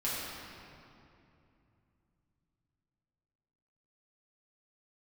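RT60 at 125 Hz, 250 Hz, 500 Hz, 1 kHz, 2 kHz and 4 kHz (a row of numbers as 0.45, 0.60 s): 4.6, 3.7, 2.9, 2.6, 2.3, 1.8 s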